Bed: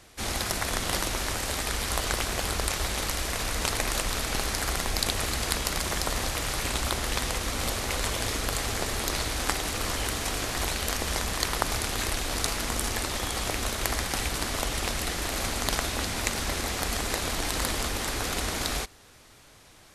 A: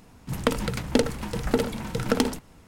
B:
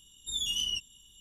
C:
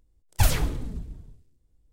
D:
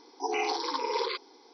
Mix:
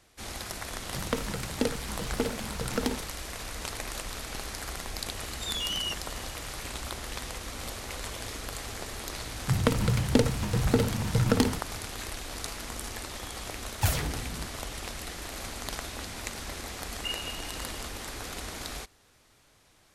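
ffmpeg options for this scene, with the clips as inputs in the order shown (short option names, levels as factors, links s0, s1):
-filter_complex "[1:a]asplit=2[s0][s1];[3:a]asplit=2[s2][s3];[0:a]volume=0.376[s4];[2:a]asplit=2[s5][s6];[s6]highpass=f=720:p=1,volume=7.08,asoftclip=type=tanh:threshold=0.1[s7];[s5][s7]amix=inputs=2:normalize=0,lowpass=f=1600:p=1,volume=0.501[s8];[s1]equalizer=f=100:t=o:w=1.1:g=14[s9];[s2]highpass=65[s10];[s3]lowpass=f=2500:t=q:w=0.5098,lowpass=f=2500:t=q:w=0.6013,lowpass=f=2500:t=q:w=0.9,lowpass=f=2500:t=q:w=2.563,afreqshift=-2900[s11];[s0]atrim=end=2.67,asetpts=PTS-STARTPTS,volume=0.447,afade=t=in:d=0.004:c=hsin,afade=t=out:st=2.666:d=0.004:c=hsin,adelay=660[s12];[s8]atrim=end=1.2,asetpts=PTS-STARTPTS,afade=t=in:d=0.004:c=hsin,afade=t=out:st=1.196:d=0.004:c=hsin,adelay=5140[s13];[s9]atrim=end=2.67,asetpts=PTS-STARTPTS,volume=0.708,afade=t=in:d=0.004:c=hsin,afade=t=out:st=2.666:d=0.004:c=hsin,adelay=9200[s14];[s10]atrim=end=1.92,asetpts=PTS-STARTPTS,volume=0.668,afade=t=in:d=0.004:c=hsin,afade=t=out:st=1.916:d=0.004:c=hsin,adelay=13430[s15];[s11]atrim=end=1.92,asetpts=PTS-STARTPTS,volume=0.15,afade=t=in:d=0.004:c=hsin,afade=t=out:st=1.916:d=0.004:c=hsin,adelay=16640[s16];[s4][s12][s13][s14][s15][s16]amix=inputs=6:normalize=0"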